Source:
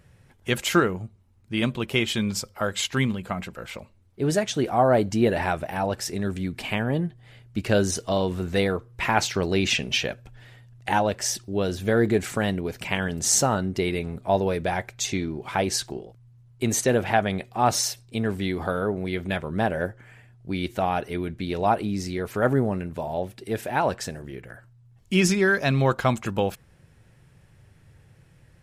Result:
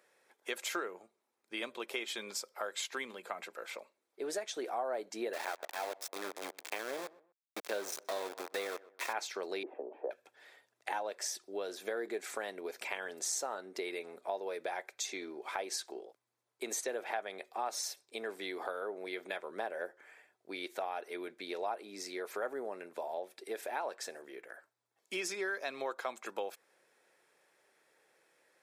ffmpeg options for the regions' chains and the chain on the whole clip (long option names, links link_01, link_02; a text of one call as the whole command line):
ffmpeg -i in.wav -filter_complex "[0:a]asettb=1/sr,asplit=3[link_01][link_02][link_03];[link_01]atrim=end=5.334[link_04];[link_02]atrim=start=5.33:end=9.13,asetpts=PTS-STARTPTS,afade=type=in:duration=0.004:curve=qsin,afade=type=out:start_time=3.796:duration=0.004:curve=qsin,aeval=exprs='val(0)*gte(abs(val(0)),0.0562)':channel_layout=same,asplit=2[link_05][link_06];[link_06]adelay=125,lowpass=frequency=1500:poles=1,volume=-22dB,asplit=2[link_07][link_08];[link_08]adelay=125,lowpass=frequency=1500:poles=1,volume=0.31[link_09];[link_05][link_07][link_09]amix=inputs=3:normalize=0,atrim=end_sample=167580[link_10];[link_03]atrim=start=9.126[link_11];[link_04][link_10]acrossfade=duration=0.004:curve1=hsin:curve2=qsin[link_12];[link_12][link_11]acrossfade=duration=0.004:curve1=qsin:curve2=hsin,asettb=1/sr,asplit=3[link_13][link_14][link_15];[link_13]atrim=end=9.634[link_16];[link_14]atrim=start=9.63:end=10.11,asetpts=PTS-STARTPTS,afade=type=in:duration=0.004:curve=qsin,afade=type=out:start_time=0.476:duration=0.004:curve=qsin,asuperpass=centerf=510:order=8:qfactor=0.76,acontrast=38[link_17];[link_15]atrim=start=10.106[link_18];[link_16][link_17]acrossfade=duration=0.004:curve1=hsin:curve2=qsin[link_19];[link_19][link_18]acrossfade=duration=0.004:curve1=qsin:curve2=hsin,highpass=frequency=390:width=0.5412,highpass=frequency=390:width=1.3066,bandreject=frequency=2900:width=9.3,acompressor=threshold=-31dB:ratio=3,volume=-5.5dB" out.wav